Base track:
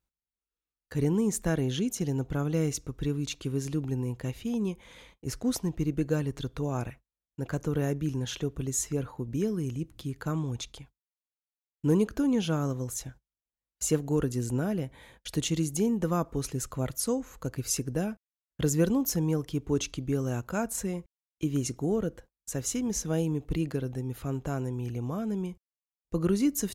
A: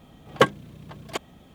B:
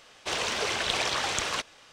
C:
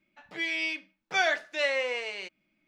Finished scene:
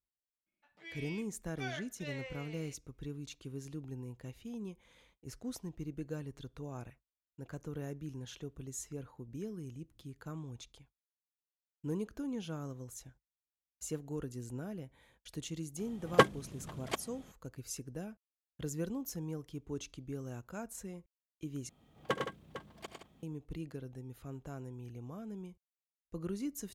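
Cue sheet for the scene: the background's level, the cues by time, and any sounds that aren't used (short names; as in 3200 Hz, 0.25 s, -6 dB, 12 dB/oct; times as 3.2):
base track -13 dB
0.46 add C -17.5 dB
15.78 add A -5 dB + CVSD 64 kbps
21.69 replace with A -16.5 dB + tapped delay 72/103/124/167/453 ms -14/-4.5/-20/-9.5/-12 dB
not used: B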